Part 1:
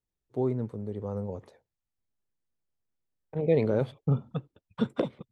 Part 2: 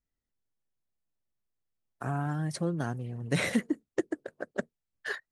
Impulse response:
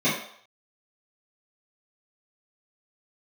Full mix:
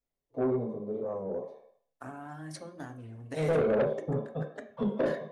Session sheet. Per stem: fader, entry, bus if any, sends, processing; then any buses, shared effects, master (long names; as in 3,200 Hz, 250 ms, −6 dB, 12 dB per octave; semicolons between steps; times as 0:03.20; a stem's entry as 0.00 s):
−16.0 dB, 0.00 s, send −7 dB, flat-topped bell 640 Hz +11.5 dB
−4.5 dB, 0.00 s, send −20.5 dB, parametric band 160 Hz −12 dB 0.83 octaves; downward compressor, threshold −34 dBFS, peak gain reduction 10 dB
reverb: on, RT60 0.65 s, pre-delay 3 ms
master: parametric band 99 Hz −4 dB 0.33 octaves; soft clipping −21.5 dBFS, distortion −11 dB; wow of a warped record 33 1/3 rpm, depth 100 cents